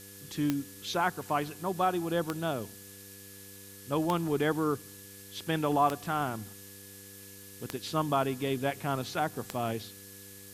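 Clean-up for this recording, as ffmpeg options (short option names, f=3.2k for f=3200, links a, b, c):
-af "adeclick=t=4,bandreject=f=99:t=h:w=4,bandreject=f=198:t=h:w=4,bandreject=f=297:t=h:w=4,bandreject=f=396:t=h:w=4,bandreject=f=495:t=h:w=4,bandreject=f=1.7k:w=30,afftdn=nr=27:nf=-49"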